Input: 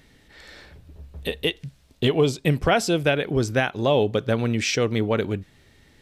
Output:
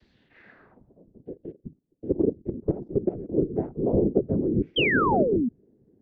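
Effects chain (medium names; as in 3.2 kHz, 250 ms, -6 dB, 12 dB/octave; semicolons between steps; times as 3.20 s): vocoder on a broken chord major triad, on D3, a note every 87 ms; treble shelf 5.5 kHz +8 dB; whisper effect; low-pass sweep 4.4 kHz -> 400 Hz, 0.09–1.17 s; 1.22–3.31 s: level held to a coarse grid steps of 15 dB; 4.76–5.49 s: painted sound fall 220–3300 Hz -19 dBFS; trim -5 dB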